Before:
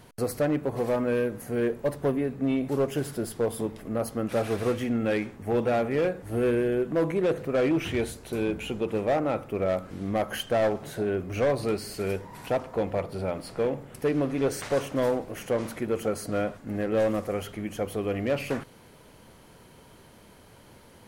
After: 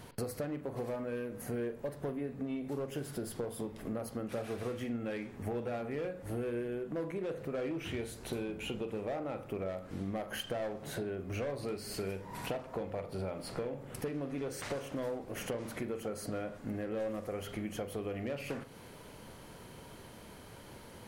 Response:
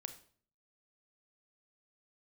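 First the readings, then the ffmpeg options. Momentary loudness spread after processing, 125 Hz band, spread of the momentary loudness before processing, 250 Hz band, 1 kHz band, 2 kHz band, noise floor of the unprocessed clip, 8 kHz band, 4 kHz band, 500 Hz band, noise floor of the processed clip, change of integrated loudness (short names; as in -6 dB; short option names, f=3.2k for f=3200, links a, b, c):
9 LU, -9.0 dB, 6 LU, -10.0 dB, -11.0 dB, -9.5 dB, -53 dBFS, -6.5 dB, -6.5 dB, -11.5 dB, -52 dBFS, -10.5 dB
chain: -filter_complex "[0:a]acompressor=threshold=-36dB:ratio=12,asplit=2[a][b];[b]aresample=11025,aresample=44100[c];[1:a]atrim=start_sample=2205,adelay=42[d];[c][d]afir=irnorm=-1:irlink=0,volume=-7dB[e];[a][e]amix=inputs=2:normalize=0,volume=1dB"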